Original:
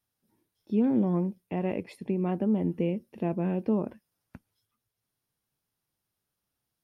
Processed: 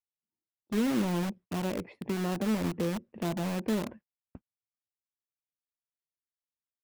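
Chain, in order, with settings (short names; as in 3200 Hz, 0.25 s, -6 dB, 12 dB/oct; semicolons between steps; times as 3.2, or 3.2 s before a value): gate -48 dBFS, range -29 dB; LPF 2000 Hz 12 dB/oct; in parallel at -3 dB: wrapped overs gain 28.5 dB; on the sum: gain -3.5 dB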